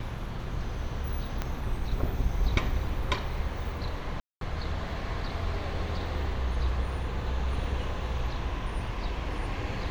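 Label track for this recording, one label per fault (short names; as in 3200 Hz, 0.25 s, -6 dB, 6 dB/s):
1.420000	1.420000	pop -16 dBFS
4.200000	4.410000	gap 0.212 s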